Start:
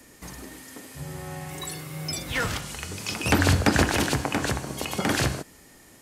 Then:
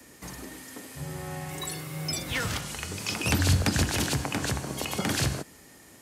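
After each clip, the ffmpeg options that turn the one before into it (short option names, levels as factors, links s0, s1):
-filter_complex "[0:a]highpass=58,acrossover=split=200|3000[s0][s1][s2];[s1]acompressor=threshold=0.0355:ratio=6[s3];[s0][s3][s2]amix=inputs=3:normalize=0"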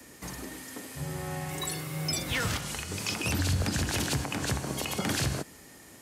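-af "alimiter=limit=0.106:level=0:latency=1:release=112,volume=1.12"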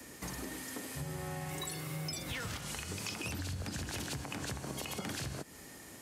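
-af "acompressor=threshold=0.0141:ratio=6"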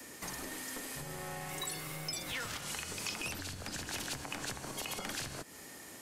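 -filter_complex "[0:a]lowshelf=f=190:g=-9,acrossover=split=680|1700[s0][s1][s2];[s0]aeval=exprs='clip(val(0),-1,0.00266)':c=same[s3];[s3][s1][s2]amix=inputs=3:normalize=0,volume=1.26"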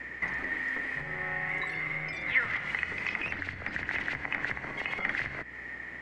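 -af "aeval=exprs='val(0)+0.00112*(sin(2*PI*60*n/s)+sin(2*PI*2*60*n/s)/2+sin(2*PI*3*60*n/s)/3+sin(2*PI*4*60*n/s)/4+sin(2*PI*5*60*n/s)/5)':c=same,lowpass=f=2000:t=q:w=10,volume=1.19"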